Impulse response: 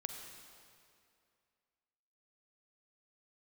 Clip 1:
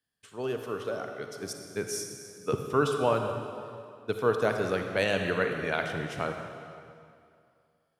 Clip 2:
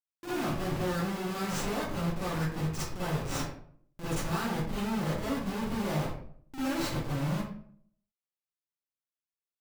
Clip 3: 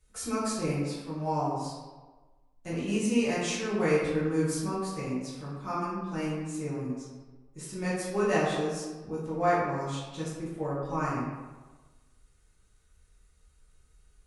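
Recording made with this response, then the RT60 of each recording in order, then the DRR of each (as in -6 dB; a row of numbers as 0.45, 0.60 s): 1; 2.4, 0.55, 1.3 s; 4.5, -11.5, -9.5 dB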